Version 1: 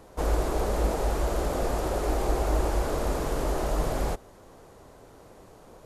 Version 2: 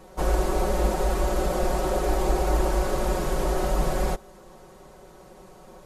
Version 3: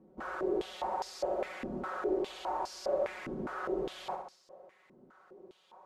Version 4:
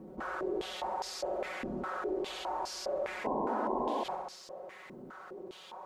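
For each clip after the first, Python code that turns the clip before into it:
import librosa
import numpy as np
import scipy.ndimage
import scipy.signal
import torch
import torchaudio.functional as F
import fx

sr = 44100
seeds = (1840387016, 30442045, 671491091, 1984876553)

y1 = x + 0.99 * np.pad(x, (int(5.4 * sr / 1000.0), 0))[:len(x)]
y2 = fx.room_flutter(y1, sr, wall_m=11.4, rt60_s=0.7)
y2 = fx.filter_held_bandpass(y2, sr, hz=4.9, low_hz=250.0, high_hz=5000.0)
y3 = fx.spec_paint(y2, sr, seeds[0], shape='noise', start_s=3.24, length_s=0.8, low_hz=210.0, high_hz=1100.0, level_db=-29.0)
y3 = fx.env_flatten(y3, sr, amount_pct=50)
y3 = y3 * librosa.db_to_amplitude(-5.0)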